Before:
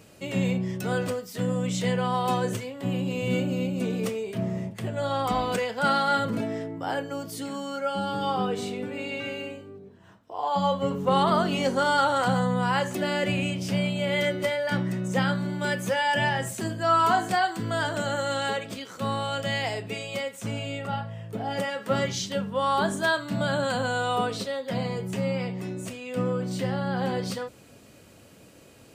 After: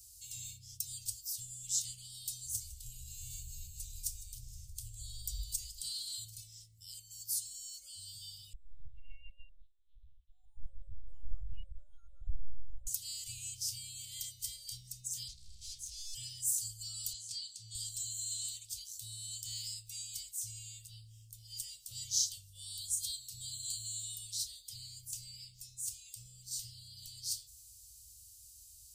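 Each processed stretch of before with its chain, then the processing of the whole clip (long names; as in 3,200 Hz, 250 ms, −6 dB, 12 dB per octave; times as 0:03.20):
0:02.29–0:05.81: echo with shifted repeats 157 ms, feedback 65%, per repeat −50 Hz, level −17 dB + dynamic equaliser 2,700 Hz, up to −5 dB, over −44 dBFS, Q 0.91
0:08.53–0:12.87: expanding power law on the bin magnitudes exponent 3.9 + bit-depth reduction 10 bits, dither none + linear-prediction vocoder at 8 kHz pitch kept
0:15.28–0:16.15: comb filter 4.7 ms, depth 55% + gain into a clipping stage and back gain 30.5 dB + high-frequency loss of the air 68 metres
0:17.13–0:17.75: band-pass filter 120–5,900 Hz + parametric band 730 Hz −9.5 dB 0.89 octaves
whole clip: inverse Chebyshev band-stop filter 200–1,700 Hz, stop band 60 dB; high-shelf EQ 7,600 Hz +5.5 dB; level +2.5 dB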